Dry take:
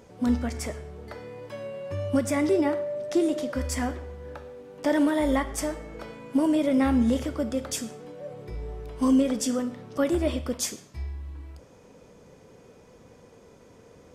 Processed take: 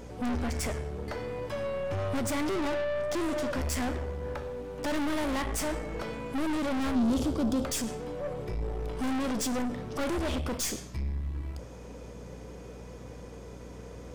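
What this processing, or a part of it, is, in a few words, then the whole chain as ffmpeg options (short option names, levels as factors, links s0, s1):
valve amplifier with mains hum: -filter_complex "[0:a]aeval=exprs='(tanh(63.1*val(0)+0.4)-tanh(0.4))/63.1':c=same,aeval=exprs='val(0)+0.00224*(sin(2*PI*60*n/s)+sin(2*PI*2*60*n/s)/2+sin(2*PI*3*60*n/s)/3+sin(2*PI*4*60*n/s)/4+sin(2*PI*5*60*n/s)/5)':c=same,asettb=1/sr,asplit=3[s0][s1][s2];[s0]atrim=end=6.954[s3];[s1]atrim=start=6.95:end=7.65,asetpts=PTS-STARTPTS,afade=t=in:d=0.004:c=qsin,afade=t=out:st=0.696:d=0.004:c=qsin,equalizer=f=250:t=o:w=1:g=6,equalizer=f=2000:t=o:w=1:g=-11,equalizer=f=4000:t=o:w=1:g=4[s4];[s2]atrim=start=7.646[s5];[s3][s4]acrossfade=d=0.004:c1=hsin:c2=qsin[s6];[s6][s5]acrossfade=d=0.004:c1=qsin:c2=hsin,volume=2.24"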